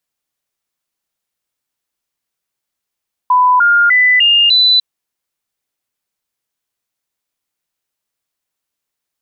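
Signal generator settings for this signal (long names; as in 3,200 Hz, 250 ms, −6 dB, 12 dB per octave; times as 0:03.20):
stepped sweep 998 Hz up, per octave 2, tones 5, 0.30 s, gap 0.00 s −6.5 dBFS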